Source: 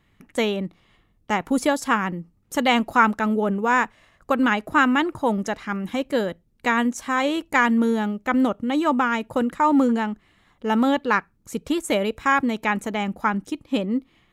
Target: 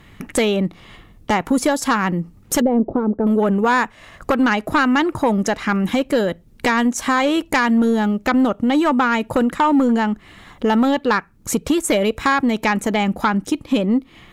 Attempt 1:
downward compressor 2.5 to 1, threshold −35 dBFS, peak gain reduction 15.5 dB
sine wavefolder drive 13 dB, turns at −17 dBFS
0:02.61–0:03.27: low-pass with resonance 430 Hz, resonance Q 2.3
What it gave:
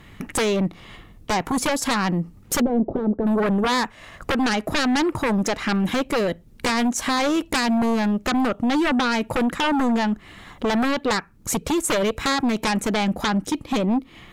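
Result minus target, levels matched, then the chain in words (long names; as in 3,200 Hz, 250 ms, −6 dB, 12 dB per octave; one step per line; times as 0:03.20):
sine wavefolder: distortion +14 dB
downward compressor 2.5 to 1, threshold −35 dBFS, peak gain reduction 15.5 dB
sine wavefolder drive 13 dB, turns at −9.5 dBFS
0:02.61–0:03.27: low-pass with resonance 430 Hz, resonance Q 2.3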